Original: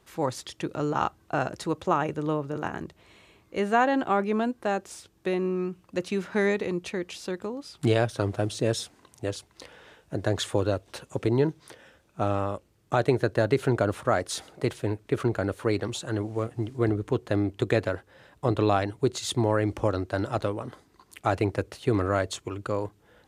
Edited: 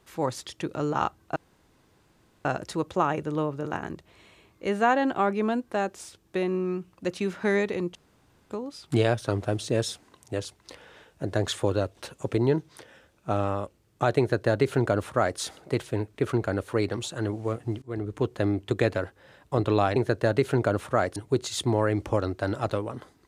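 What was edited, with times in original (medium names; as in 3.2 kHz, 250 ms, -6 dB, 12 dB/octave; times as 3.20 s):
1.36 s: insert room tone 1.09 s
6.86–7.41 s: room tone
13.10–14.30 s: copy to 18.87 s
16.73–17.14 s: fade in linear, from -20 dB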